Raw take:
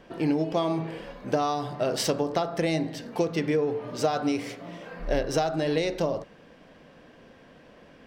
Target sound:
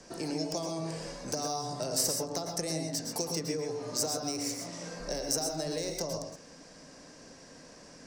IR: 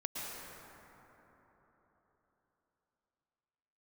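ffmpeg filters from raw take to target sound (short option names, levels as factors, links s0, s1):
-filter_complex "[0:a]acrossover=split=7600[s0][s1];[s1]aeval=exprs='sgn(val(0))*max(abs(val(0))-0.00188,0)':c=same[s2];[s0][s2]amix=inputs=2:normalize=0,acrossover=split=120|410|890|2600[s3][s4][s5][s6][s7];[s3]acompressor=threshold=0.00501:ratio=4[s8];[s4]acompressor=threshold=0.00794:ratio=4[s9];[s5]acompressor=threshold=0.0158:ratio=4[s10];[s6]acompressor=threshold=0.00316:ratio=4[s11];[s7]acompressor=threshold=0.00251:ratio=4[s12];[s8][s9][s10][s11][s12]amix=inputs=5:normalize=0,aexciter=amount=11:drive=8.9:freq=5000,asettb=1/sr,asplit=3[s13][s14][s15];[s13]atrim=end=2.434[s16];[s14]atrim=start=2.43:end=2.86,asetpts=PTS-STARTPTS,afade=t=in:d=0.004:c=qsin,afade=t=out:st=0.426:d=0.004:c=qsin,lowpass=12000[s17];[s15]atrim=start=2.856[s18];[s16][s17]acrossfade=d=0.004:c1=hsin:c2=qsin[s19];[s19][s18]acrossfade=d=0.004:c1=qsin:c2=hsin[s20];[1:a]atrim=start_sample=2205,atrim=end_sample=6174[s21];[s20][s21]afir=irnorm=-1:irlink=0,volume=1.12"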